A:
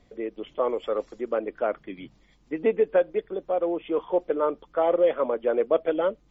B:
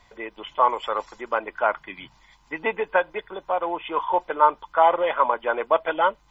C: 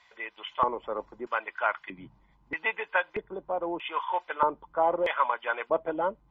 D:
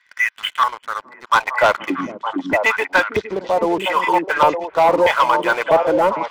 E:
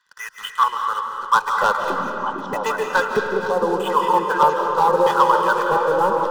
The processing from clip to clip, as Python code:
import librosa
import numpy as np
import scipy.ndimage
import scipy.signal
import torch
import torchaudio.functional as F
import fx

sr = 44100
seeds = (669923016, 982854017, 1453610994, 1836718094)

y1 = fx.low_shelf_res(x, sr, hz=650.0, db=-9.5, q=3.0)
y1 = y1 + 0.39 * np.pad(y1, (int(2.0 * sr / 1000.0), 0))[:len(y1)]
y1 = y1 * 10.0 ** (8.0 / 20.0)
y2 = fx.low_shelf(y1, sr, hz=110.0, db=11.5)
y2 = fx.filter_lfo_bandpass(y2, sr, shape='square', hz=0.79, low_hz=240.0, high_hz=2400.0, q=0.79)
y3 = fx.filter_sweep_highpass(y2, sr, from_hz=1600.0, to_hz=83.0, start_s=1.11, end_s=2.52, q=3.7)
y3 = fx.leveller(y3, sr, passes=3)
y3 = fx.echo_stepped(y3, sr, ms=457, hz=250.0, octaves=1.4, feedback_pct=70, wet_db=-0.5)
y3 = y3 * 10.0 ** (2.0 / 20.0)
y4 = fx.reverse_delay(y3, sr, ms=357, wet_db=-13)
y4 = fx.fixed_phaser(y4, sr, hz=440.0, stages=8)
y4 = fx.rev_freeverb(y4, sr, rt60_s=2.5, hf_ratio=0.6, predelay_ms=115, drr_db=3.5)